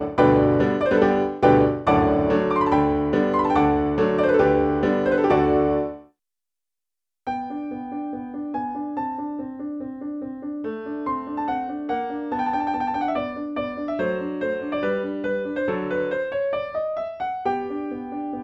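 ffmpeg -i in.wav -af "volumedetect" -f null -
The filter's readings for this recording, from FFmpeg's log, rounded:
mean_volume: -22.7 dB
max_volume: -3.7 dB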